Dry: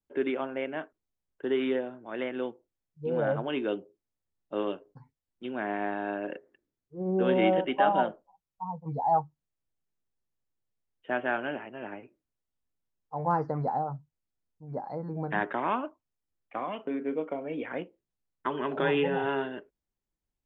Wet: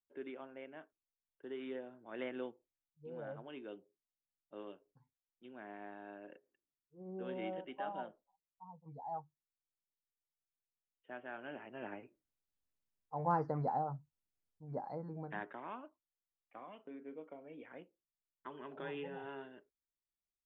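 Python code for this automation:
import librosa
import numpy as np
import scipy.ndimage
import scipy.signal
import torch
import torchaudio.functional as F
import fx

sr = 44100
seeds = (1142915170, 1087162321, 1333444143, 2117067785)

y = fx.gain(x, sr, db=fx.line((1.57, -17.0), (2.29, -8.0), (3.08, -18.0), (11.31, -18.0), (11.78, -6.0), (14.87, -6.0), (15.59, -17.5)))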